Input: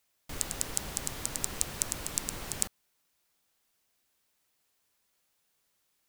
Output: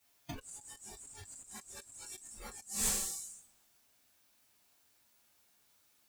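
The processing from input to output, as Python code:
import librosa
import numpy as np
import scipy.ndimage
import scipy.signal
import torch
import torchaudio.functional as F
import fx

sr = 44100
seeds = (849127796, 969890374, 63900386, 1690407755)

y = fx.rev_double_slope(x, sr, seeds[0], early_s=0.4, late_s=1.6, knee_db=-18, drr_db=-8.0)
y = fx.over_compress(y, sr, threshold_db=-44.0, ratio=-1.0)
y = fx.noise_reduce_blind(y, sr, reduce_db=18)
y = F.gain(torch.from_numpy(y), 1.0).numpy()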